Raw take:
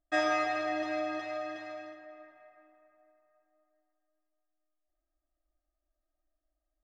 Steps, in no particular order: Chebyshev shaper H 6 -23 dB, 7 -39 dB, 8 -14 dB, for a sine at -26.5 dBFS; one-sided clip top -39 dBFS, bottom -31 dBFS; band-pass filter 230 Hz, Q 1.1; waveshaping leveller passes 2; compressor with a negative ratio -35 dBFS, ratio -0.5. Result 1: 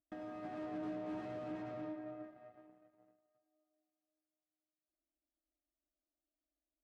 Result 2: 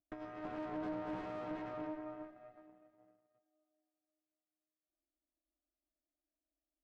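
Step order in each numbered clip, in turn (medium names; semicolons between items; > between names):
Chebyshev shaper > compressor with a negative ratio > waveshaping leveller > one-sided clip > band-pass filter; compressor with a negative ratio > waveshaping leveller > one-sided clip > band-pass filter > Chebyshev shaper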